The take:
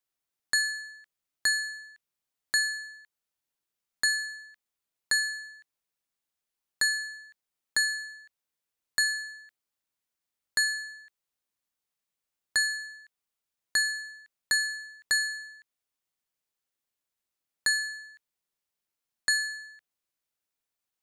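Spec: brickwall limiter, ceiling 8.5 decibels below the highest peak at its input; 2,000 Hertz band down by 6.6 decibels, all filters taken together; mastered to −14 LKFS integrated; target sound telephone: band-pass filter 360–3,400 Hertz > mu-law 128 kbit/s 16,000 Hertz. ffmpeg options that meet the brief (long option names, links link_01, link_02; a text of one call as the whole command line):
ffmpeg -i in.wav -af "equalizer=frequency=2000:width_type=o:gain=-7.5,alimiter=level_in=1dB:limit=-24dB:level=0:latency=1,volume=-1dB,highpass=360,lowpass=3400,volume=26dB" -ar 16000 -c:a pcm_mulaw out.wav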